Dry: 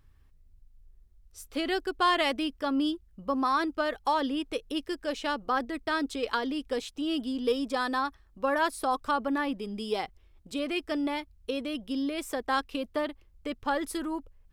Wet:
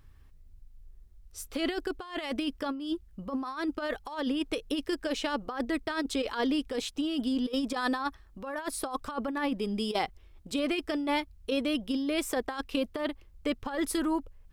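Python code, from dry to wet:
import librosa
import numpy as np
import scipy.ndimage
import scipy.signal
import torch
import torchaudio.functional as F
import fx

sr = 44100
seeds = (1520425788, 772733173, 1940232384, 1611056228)

y = fx.over_compress(x, sr, threshold_db=-31.0, ratio=-0.5)
y = y * librosa.db_to_amplitude(1.5)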